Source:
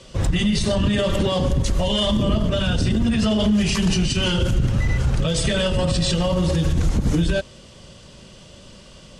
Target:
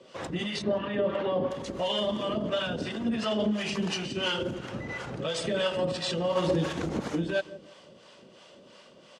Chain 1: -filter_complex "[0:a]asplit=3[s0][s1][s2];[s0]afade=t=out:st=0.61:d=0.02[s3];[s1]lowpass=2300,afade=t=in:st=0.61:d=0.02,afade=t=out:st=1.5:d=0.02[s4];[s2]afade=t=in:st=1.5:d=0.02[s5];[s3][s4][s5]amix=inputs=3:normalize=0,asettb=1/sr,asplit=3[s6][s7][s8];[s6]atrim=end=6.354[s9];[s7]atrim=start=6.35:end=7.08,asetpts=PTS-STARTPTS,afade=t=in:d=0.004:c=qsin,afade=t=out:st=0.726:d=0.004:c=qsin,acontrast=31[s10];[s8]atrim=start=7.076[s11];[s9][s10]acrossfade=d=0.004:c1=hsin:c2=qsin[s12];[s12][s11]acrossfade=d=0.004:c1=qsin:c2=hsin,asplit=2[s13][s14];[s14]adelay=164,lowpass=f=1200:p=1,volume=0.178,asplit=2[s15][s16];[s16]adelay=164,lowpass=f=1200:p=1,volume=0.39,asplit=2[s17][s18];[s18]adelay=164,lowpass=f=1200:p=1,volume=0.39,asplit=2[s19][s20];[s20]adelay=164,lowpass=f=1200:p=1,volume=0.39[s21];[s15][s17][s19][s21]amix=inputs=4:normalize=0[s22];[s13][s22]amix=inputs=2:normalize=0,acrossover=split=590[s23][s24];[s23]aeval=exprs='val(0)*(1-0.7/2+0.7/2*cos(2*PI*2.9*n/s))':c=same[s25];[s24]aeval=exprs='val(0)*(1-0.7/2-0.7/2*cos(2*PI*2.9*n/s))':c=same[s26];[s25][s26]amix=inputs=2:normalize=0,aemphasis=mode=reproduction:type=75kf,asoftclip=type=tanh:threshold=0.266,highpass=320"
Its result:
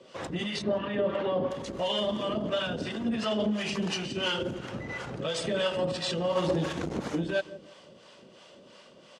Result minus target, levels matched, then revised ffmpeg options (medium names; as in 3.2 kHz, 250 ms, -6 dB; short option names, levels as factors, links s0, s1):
saturation: distortion +17 dB
-filter_complex "[0:a]asplit=3[s0][s1][s2];[s0]afade=t=out:st=0.61:d=0.02[s3];[s1]lowpass=2300,afade=t=in:st=0.61:d=0.02,afade=t=out:st=1.5:d=0.02[s4];[s2]afade=t=in:st=1.5:d=0.02[s5];[s3][s4][s5]amix=inputs=3:normalize=0,asettb=1/sr,asplit=3[s6][s7][s8];[s6]atrim=end=6.354[s9];[s7]atrim=start=6.35:end=7.08,asetpts=PTS-STARTPTS,afade=t=in:d=0.004:c=qsin,afade=t=out:st=0.726:d=0.004:c=qsin,acontrast=31[s10];[s8]atrim=start=7.076[s11];[s9][s10]acrossfade=d=0.004:c1=hsin:c2=qsin[s12];[s12][s11]acrossfade=d=0.004:c1=qsin:c2=hsin,asplit=2[s13][s14];[s14]adelay=164,lowpass=f=1200:p=1,volume=0.178,asplit=2[s15][s16];[s16]adelay=164,lowpass=f=1200:p=1,volume=0.39,asplit=2[s17][s18];[s18]adelay=164,lowpass=f=1200:p=1,volume=0.39,asplit=2[s19][s20];[s20]adelay=164,lowpass=f=1200:p=1,volume=0.39[s21];[s15][s17][s19][s21]amix=inputs=4:normalize=0[s22];[s13][s22]amix=inputs=2:normalize=0,acrossover=split=590[s23][s24];[s23]aeval=exprs='val(0)*(1-0.7/2+0.7/2*cos(2*PI*2.9*n/s))':c=same[s25];[s24]aeval=exprs='val(0)*(1-0.7/2-0.7/2*cos(2*PI*2.9*n/s))':c=same[s26];[s25][s26]amix=inputs=2:normalize=0,aemphasis=mode=reproduction:type=75kf,asoftclip=type=tanh:threshold=0.841,highpass=320"